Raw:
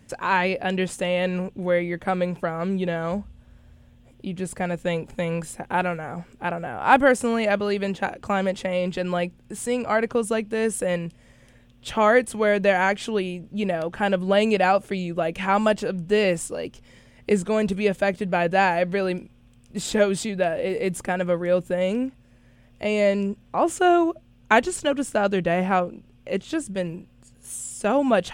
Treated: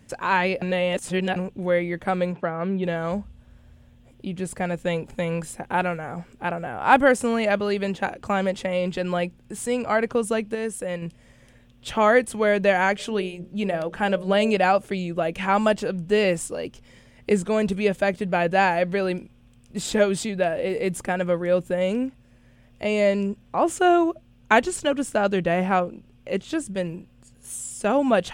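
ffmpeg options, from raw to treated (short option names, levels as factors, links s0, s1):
-filter_complex "[0:a]asplit=3[s0][s1][s2];[s0]afade=t=out:st=2.32:d=0.02[s3];[s1]highpass=110,lowpass=2800,afade=t=in:st=2.32:d=0.02,afade=t=out:st=2.82:d=0.02[s4];[s2]afade=t=in:st=2.82:d=0.02[s5];[s3][s4][s5]amix=inputs=3:normalize=0,asplit=3[s6][s7][s8];[s6]afade=t=out:st=12.98:d=0.02[s9];[s7]bandreject=f=60:t=h:w=6,bandreject=f=120:t=h:w=6,bandreject=f=180:t=h:w=6,bandreject=f=240:t=h:w=6,bandreject=f=300:t=h:w=6,bandreject=f=360:t=h:w=6,bandreject=f=420:t=h:w=6,bandreject=f=480:t=h:w=6,bandreject=f=540:t=h:w=6,bandreject=f=600:t=h:w=6,afade=t=in:st=12.98:d=0.02,afade=t=out:st=14.53:d=0.02[s10];[s8]afade=t=in:st=14.53:d=0.02[s11];[s9][s10][s11]amix=inputs=3:normalize=0,asplit=5[s12][s13][s14][s15][s16];[s12]atrim=end=0.622[s17];[s13]atrim=start=0.618:end=1.362,asetpts=PTS-STARTPTS,areverse[s18];[s14]atrim=start=1.358:end=10.552[s19];[s15]atrim=start=10.548:end=11.022,asetpts=PTS-STARTPTS,volume=0.562[s20];[s16]atrim=start=11.018[s21];[s17][s18]acrossfade=d=0.004:c1=hsin:c2=hsin[s22];[s22][s19]acrossfade=d=0.004:c1=hsin:c2=hsin[s23];[s23][s20]acrossfade=d=0.004:c1=hsin:c2=hsin[s24];[s24][s21]acrossfade=d=0.004:c1=hsin:c2=hsin"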